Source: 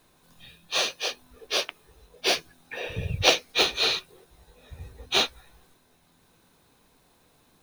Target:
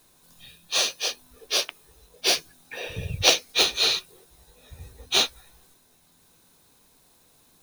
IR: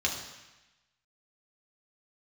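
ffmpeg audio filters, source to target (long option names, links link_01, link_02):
-af "bass=frequency=250:gain=0,treble=frequency=4000:gain=9,volume=-1.5dB"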